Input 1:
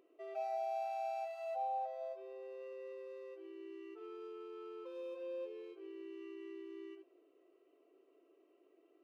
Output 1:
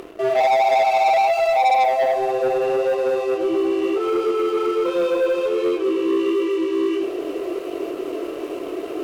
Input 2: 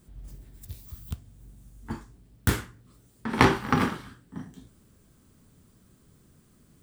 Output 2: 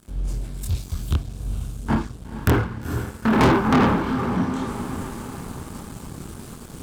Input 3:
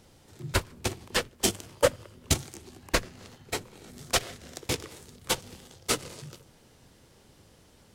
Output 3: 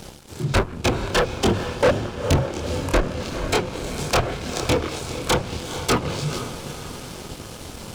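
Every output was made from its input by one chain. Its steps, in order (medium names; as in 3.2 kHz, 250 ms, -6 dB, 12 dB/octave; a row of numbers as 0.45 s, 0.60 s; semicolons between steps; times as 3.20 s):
low-pass that closes with the level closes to 1.3 kHz, closed at -25.5 dBFS; band-stop 1.9 kHz, Q 6.7; reverse; upward compressor, threshold -44 dBFS; reverse; chorus voices 2, 1.3 Hz, delay 25 ms, depth 3 ms; saturation -20.5 dBFS; echo that smears into a reverb 466 ms, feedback 58%, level -14 dB; waveshaping leveller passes 3; peak normalisation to -12 dBFS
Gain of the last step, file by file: +20.5 dB, +8.0 dB, +8.5 dB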